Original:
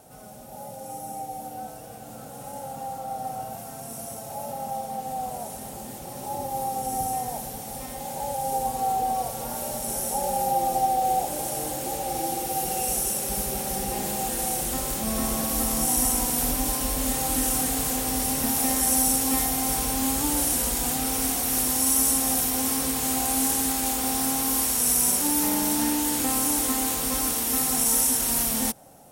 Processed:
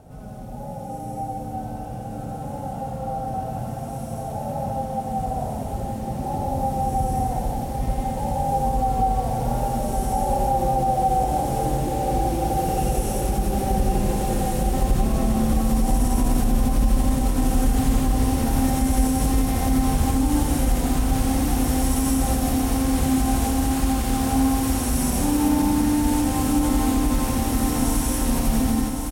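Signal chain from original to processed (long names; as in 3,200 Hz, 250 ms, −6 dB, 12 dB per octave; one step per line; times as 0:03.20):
RIAA equalisation playback
multi-tap delay 89/180 ms −4/−3.5 dB
brickwall limiter −13 dBFS, peak gain reduction 10 dB
high-shelf EQ 7,800 Hz +4 dB
repeating echo 1,110 ms, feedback 59%, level −7 dB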